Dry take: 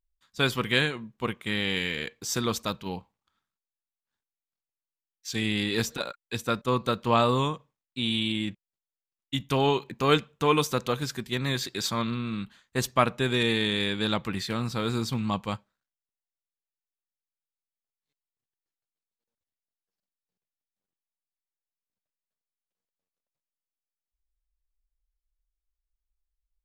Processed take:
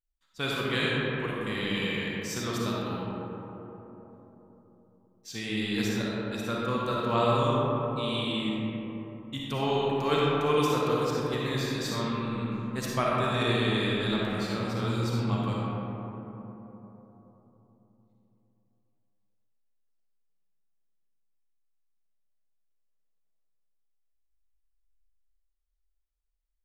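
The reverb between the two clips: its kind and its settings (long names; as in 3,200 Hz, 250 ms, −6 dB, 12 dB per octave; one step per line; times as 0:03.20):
comb and all-pass reverb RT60 3.9 s, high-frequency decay 0.3×, pre-delay 15 ms, DRR −5.5 dB
level −8 dB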